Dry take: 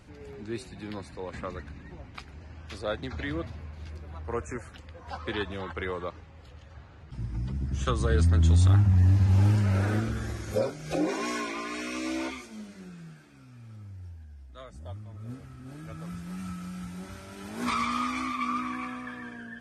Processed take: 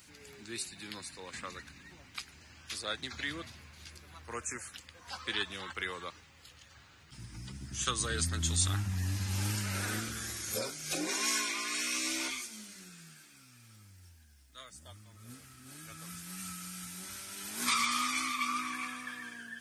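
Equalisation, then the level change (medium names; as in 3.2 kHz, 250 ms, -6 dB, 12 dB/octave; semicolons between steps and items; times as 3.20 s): RIAA curve recording; peaking EQ 600 Hz -10 dB 1.8 oct; 0.0 dB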